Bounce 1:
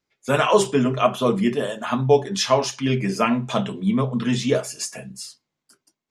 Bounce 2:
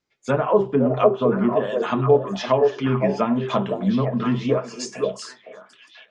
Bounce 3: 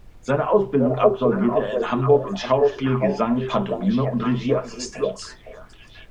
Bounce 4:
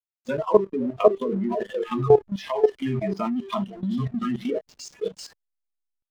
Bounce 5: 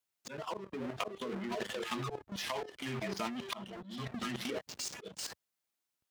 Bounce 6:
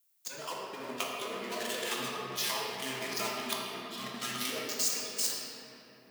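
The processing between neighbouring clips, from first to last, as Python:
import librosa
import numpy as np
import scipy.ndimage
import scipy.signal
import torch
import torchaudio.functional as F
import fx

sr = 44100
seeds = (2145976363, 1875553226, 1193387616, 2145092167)

y1 = scipy.signal.sosfilt(scipy.signal.butter(4, 7700.0, 'lowpass', fs=sr, output='sos'), x)
y1 = fx.env_lowpass_down(y1, sr, base_hz=840.0, full_db=-15.0)
y1 = fx.echo_stepped(y1, sr, ms=511, hz=500.0, octaves=1.4, feedback_pct=70, wet_db=-1.5)
y2 = fx.dmg_noise_colour(y1, sr, seeds[0], colour='brown', level_db=-45.0)
y3 = fx.noise_reduce_blind(y2, sr, reduce_db=28)
y3 = fx.backlash(y3, sr, play_db=-37.0)
y3 = fx.level_steps(y3, sr, step_db=14)
y3 = y3 * librosa.db_to_amplitude(3.0)
y4 = scipy.signal.sosfilt(scipy.signal.butter(2, 82.0, 'highpass', fs=sr, output='sos'), y3)
y4 = fx.auto_swell(y4, sr, attack_ms=316.0)
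y4 = fx.spectral_comp(y4, sr, ratio=2.0)
y4 = y4 * librosa.db_to_amplitude(-4.5)
y5 = fx.riaa(y4, sr, side='recording')
y5 = fx.room_shoebox(y5, sr, seeds[1], volume_m3=220.0, walls='hard', distance_m=0.71)
y5 = y5 * librosa.db_to_amplitude(-2.0)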